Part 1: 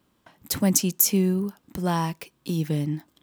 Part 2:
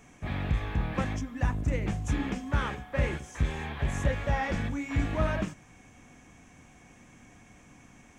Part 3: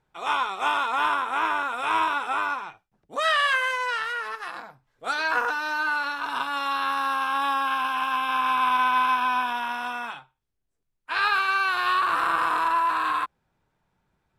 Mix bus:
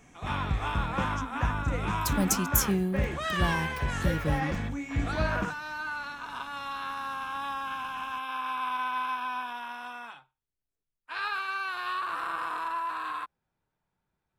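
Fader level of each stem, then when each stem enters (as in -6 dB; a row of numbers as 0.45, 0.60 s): -6.0, -1.5, -9.5 dB; 1.55, 0.00, 0.00 s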